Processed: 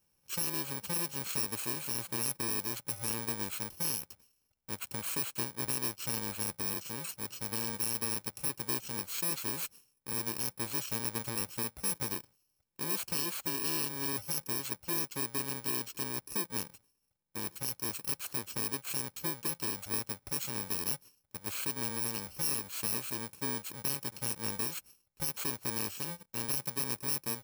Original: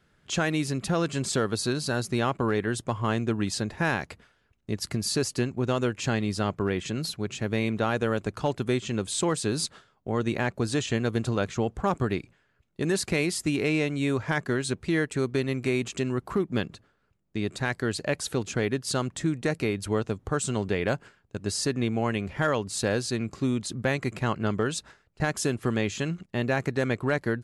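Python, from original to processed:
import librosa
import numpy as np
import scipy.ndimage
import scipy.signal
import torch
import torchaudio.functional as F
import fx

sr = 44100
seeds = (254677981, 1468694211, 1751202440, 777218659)

y = fx.bit_reversed(x, sr, seeds[0], block=64)
y = fx.low_shelf(y, sr, hz=320.0, db=-8.5)
y = F.gain(torch.from_numpy(y), -7.0).numpy()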